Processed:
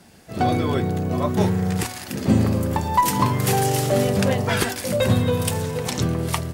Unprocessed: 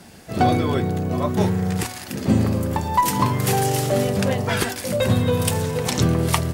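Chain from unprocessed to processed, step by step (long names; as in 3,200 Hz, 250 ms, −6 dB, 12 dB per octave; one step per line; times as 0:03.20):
automatic gain control
level −5.5 dB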